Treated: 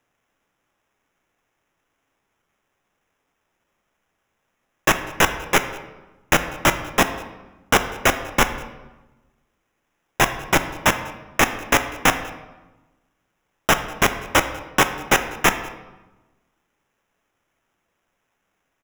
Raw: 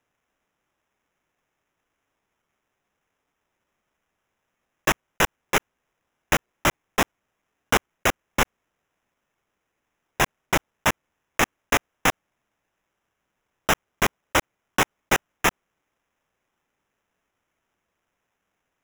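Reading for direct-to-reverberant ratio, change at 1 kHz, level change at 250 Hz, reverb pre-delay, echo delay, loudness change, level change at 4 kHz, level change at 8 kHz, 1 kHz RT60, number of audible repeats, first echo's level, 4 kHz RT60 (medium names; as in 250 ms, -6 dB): 8.5 dB, +4.5 dB, +4.5 dB, 3 ms, 195 ms, +4.5 dB, +4.5 dB, +4.0 dB, 1.1 s, 1, -23.0 dB, 0.75 s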